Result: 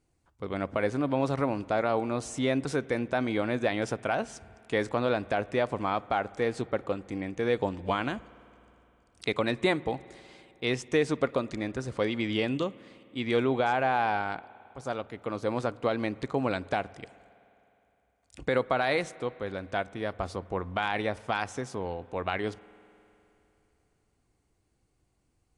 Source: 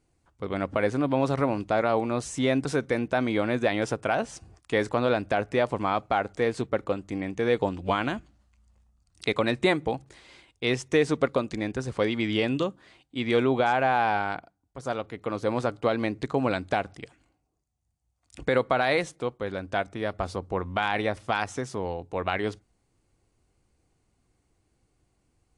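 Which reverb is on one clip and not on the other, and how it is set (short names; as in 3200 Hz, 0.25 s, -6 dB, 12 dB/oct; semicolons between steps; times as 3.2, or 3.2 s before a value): spring tank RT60 3.1 s, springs 51 ms, chirp 70 ms, DRR 20 dB; gain -3 dB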